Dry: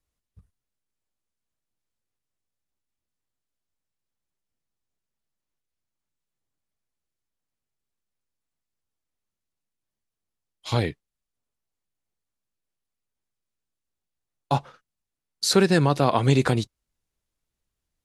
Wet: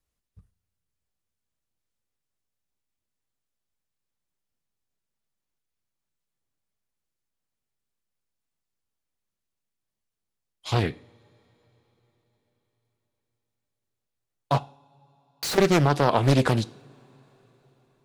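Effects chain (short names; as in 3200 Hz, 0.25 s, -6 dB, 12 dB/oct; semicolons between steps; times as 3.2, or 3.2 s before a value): 14.63–15.58 Schmitt trigger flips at -35.5 dBFS; two-slope reverb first 0.5 s, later 4.7 s, from -22 dB, DRR 15.5 dB; Doppler distortion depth 0.79 ms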